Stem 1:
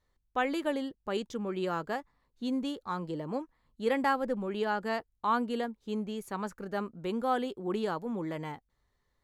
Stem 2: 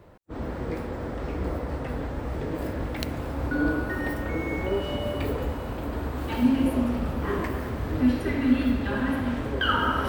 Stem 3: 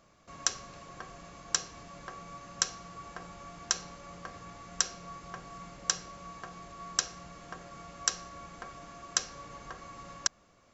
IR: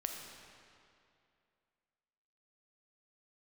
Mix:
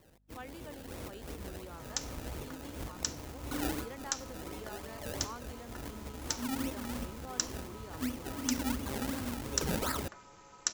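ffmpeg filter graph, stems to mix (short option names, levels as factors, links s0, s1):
-filter_complex "[0:a]volume=0.133,asplit=2[s0][s1];[1:a]acrusher=samples=28:mix=1:aa=0.000001:lfo=1:lforange=28:lforate=2.8,aeval=exprs='val(0)+0.00112*(sin(2*PI*50*n/s)+sin(2*PI*2*50*n/s)/2+sin(2*PI*3*50*n/s)/3+sin(2*PI*4*50*n/s)/4+sin(2*PI*5*50*n/s)/5)':c=same,volume=0.282,asplit=2[s2][s3];[s3]volume=0.0668[s4];[2:a]aeval=exprs='val(0)*sin(2*PI*150*n/s)':c=same,adelay=1500,volume=0.531[s5];[s1]apad=whole_len=444657[s6];[s2][s6]sidechaincompress=threshold=0.00178:ratio=5:attack=12:release=158[s7];[3:a]atrim=start_sample=2205[s8];[s4][s8]afir=irnorm=-1:irlink=0[s9];[s0][s7][s5][s9]amix=inputs=4:normalize=0,highshelf=f=7100:g=9.5"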